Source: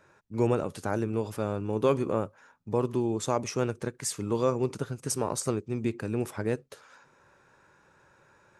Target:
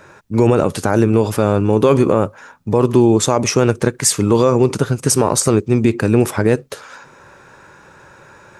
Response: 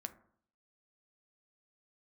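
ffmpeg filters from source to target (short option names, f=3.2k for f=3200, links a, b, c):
-af "alimiter=level_in=18.5dB:limit=-1dB:release=50:level=0:latency=1,volume=-1dB"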